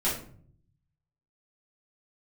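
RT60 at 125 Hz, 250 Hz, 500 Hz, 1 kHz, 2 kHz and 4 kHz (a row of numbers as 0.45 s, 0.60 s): 1.2 s, 0.85 s, 0.60 s, 0.45 s, 0.40 s, 0.30 s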